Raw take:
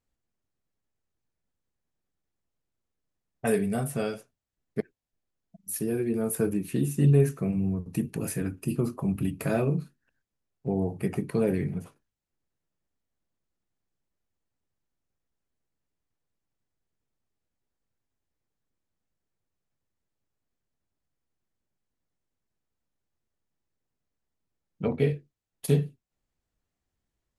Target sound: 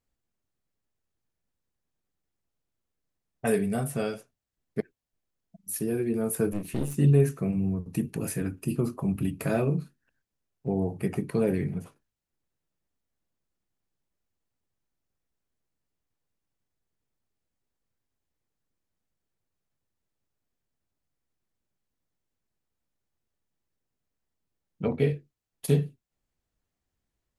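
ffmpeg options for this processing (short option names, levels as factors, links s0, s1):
-filter_complex "[0:a]asettb=1/sr,asplit=3[s0][s1][s2];[s0]atrim=end=6.524[s3];[s1]atrim=start=6.52:end=6.95,asetpts=PTS-STARTPTS,afade=t=in:d=0.004:c=qsin,afade=t=out:st=0.426:d=0.004:c=qsin,aeval=exprs='clip(val(0),-1,0.0126)':c=same[s4];[s2]atrim=start=6.946[s5];[s3][s4]acrossfade=d=0.004:c1=hsin:c2=qsin[s6];[s6][s5]acrossfade=d=0.004:c1=qsin:c2=hsin"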